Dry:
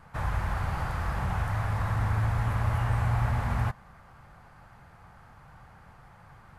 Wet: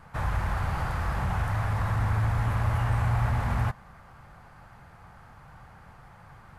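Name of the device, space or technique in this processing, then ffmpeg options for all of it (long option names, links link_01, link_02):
parallel distortion: -filter_complex "[0:a]asplit=2[link_01][link_02];[link_02]asoftclip=type=hard:threshold=-30dB,volume=-11dB[link_03];[link_01][link_03]amix=inputs=2:normalize=0"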